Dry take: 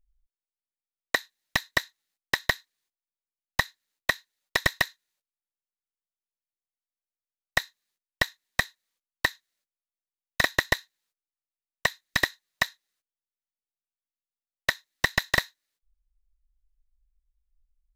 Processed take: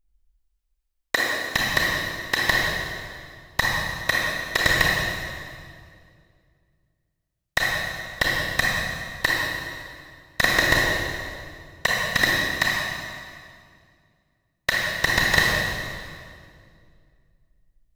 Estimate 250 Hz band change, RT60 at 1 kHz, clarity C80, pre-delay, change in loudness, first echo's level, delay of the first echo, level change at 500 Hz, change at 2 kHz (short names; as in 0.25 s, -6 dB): +9.0 dB, 2.0 s, 0.0 dB, 28 ms, +5.5 dB, none, none, +7.5 dB, +7.0 dB